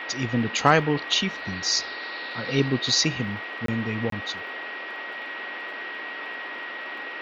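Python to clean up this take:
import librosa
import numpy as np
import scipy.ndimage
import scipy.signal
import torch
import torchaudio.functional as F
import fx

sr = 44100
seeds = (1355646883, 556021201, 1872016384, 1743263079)

y = fx.fix_declick_ar(x, sr, threshold=6.5)
y = fx.notch(y, sr, hz=1900.0, q=30.0)
y = fx.fix_interpolate(y, sr, at_s=(3.66, 4.1), length_ms=23.0)
y = fx.noise_reduce(y, sr, print_start_s=6.69, print_end_s=7.19, reduce_db=30.0)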